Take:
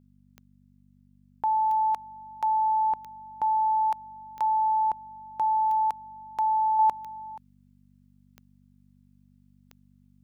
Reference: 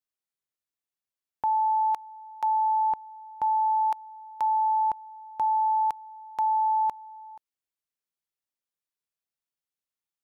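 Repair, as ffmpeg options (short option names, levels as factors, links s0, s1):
-af "adeclick=t=4,bandreject=f=48.5:t=h:w=4,bandreject=f=97:t=h:w=4,bandreject=f=145.5:t=h:w=4,bandreject=f=194:t=h:w=4,bandreject=f=242.5:t=h:w=4,asetnsamples=n=441:p=0,asendcmd='6.79 volume volume -4.5dB',volume=1"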